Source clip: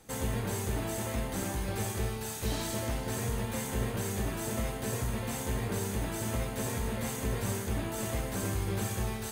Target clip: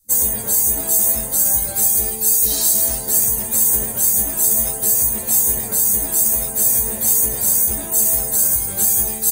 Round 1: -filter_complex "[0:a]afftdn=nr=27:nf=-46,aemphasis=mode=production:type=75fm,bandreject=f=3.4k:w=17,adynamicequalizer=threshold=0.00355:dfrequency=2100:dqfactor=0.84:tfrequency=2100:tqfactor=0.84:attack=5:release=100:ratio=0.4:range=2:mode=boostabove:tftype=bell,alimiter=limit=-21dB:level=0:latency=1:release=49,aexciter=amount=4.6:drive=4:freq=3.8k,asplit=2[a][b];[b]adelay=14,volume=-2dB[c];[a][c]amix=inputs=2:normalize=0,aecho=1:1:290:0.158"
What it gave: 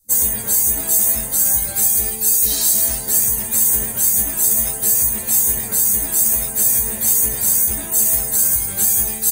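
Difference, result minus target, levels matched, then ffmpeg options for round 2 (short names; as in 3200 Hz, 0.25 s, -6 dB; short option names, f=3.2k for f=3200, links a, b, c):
500 Hz band -3.0 dB
-filter_complex "[0:a]afftdn=nr=27:nf=-46,aemphasis=mode=production:type=75fm,bandreject=f=3.4k:w=17,adynamicequalizer=threshold=0.00355:dfrequency=590:dqfactor=0.84:tfrequency=590:tqfactor=0.84:attack=5:release=100:ratio=0.4:range=2:mode=boostabove:tftype=bell,alimiter=limit=-21dB:level=0:latency=1:release=49,aexciter=amount=4.6:drive=4:freq=3.8k,asplit=2[a][b];[b]adelay=14,volume=-2dB[c];[a][c]amix=inputs=2:normalize=0,aecho=1:1:290:0.158"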